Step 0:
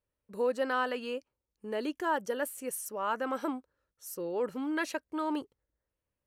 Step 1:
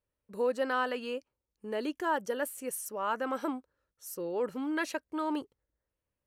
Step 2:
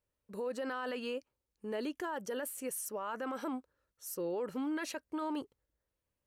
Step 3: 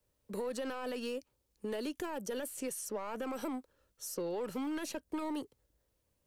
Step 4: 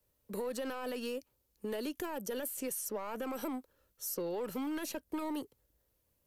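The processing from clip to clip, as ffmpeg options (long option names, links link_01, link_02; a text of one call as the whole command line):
ffmpeg -i in.wav -af anull out.wav
ffmpeg -i in.wav -af "alimiter=level_in=6dB:limit=-24dB:level=0:latency=1:release=35,volume=-6dB" out.wav
ffmpeg -i in.wav -filter_complex "[0:a]acrossover=split=240|860|7100[link_01][link_02][link_03][link_04];[link_01]acompressor=threshold=-57dB:ratio=4[link_05];[link_02]acompressor=threshold=-49dB:ratio=4[link_06];[link_03]acompressor=threshold=-52dB:ratio=4[link_07];[link_04]acompressor=threshold=-58dB:ratio=4[link_08];[link_05][link_06][link_07][link_08]amix=inputs=4:normalize=0,acrossover=split=120|870|3200[link_09][link_10][link_11][link_12];[link_11]aeval=exprs='max(val(0),0)':channel_layout=same[link_13];[link_09][link_10][link_13][link_12]amix=inputs=4:normalize=0,volume=9dB" out.wav
ffmpeg -i in.wav -af "equalizer=frequency=13000:width=2.4:gain=11.5" out.wav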